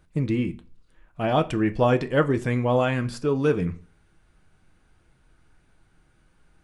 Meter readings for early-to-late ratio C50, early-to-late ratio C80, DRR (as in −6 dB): 19.0 dB, 23.0 dB, 8.0 dB